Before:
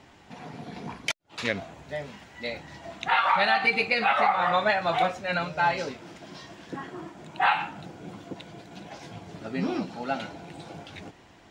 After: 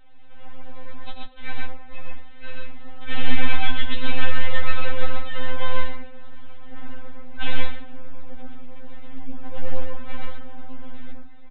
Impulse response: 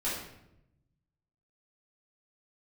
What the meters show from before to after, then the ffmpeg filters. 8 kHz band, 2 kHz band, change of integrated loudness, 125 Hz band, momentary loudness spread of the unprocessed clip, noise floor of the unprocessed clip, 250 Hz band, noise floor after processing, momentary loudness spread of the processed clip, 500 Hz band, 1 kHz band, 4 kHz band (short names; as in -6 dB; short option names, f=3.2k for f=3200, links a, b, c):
n/a, -4.5 dB, -6.5 dB, +8.0 dB, 21 LU, -54 dBFS, -2.5 dB, -33 dBFS, 19 LU, -6.5 dB, -11.0 dB, -0.5 dB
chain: -filter_complex "[0:a]lowpass=2.8k,asubboost=boost=5:cutoff=140,aresample=8000,aeval=exprs='abs(val(0))':c=same,aresample=44100,aecho=1:1:93.29|128.3:0.447|0.891,asplit=2[a][b];[1:a]atrim=start_sample=2205[c];[b][c]afir=irnorm=-1:irlink=0,volume=-16dB[d];[a][d]amix=inputs=2:normalize=0,afftfilt=real='re*3.46*eq(mod(b,12),0)':imag='im*3.46*eq(mod(b,12),0)':win_size=2048:overlap=0.75,volume=-2.5dB"